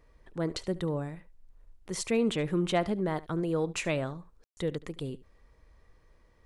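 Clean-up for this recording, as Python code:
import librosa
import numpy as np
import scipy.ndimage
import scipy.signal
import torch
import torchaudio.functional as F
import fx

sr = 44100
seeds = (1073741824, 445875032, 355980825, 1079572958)

y = fx.fix_ambience(x, sr, seeds[0], print_start_s=5.93, print_end_s=6.43, start_s=4.44, end_s=4.57)
y = fx.fix_echo_inverse(y, sr, delay_ms=73, level_db=-19.5)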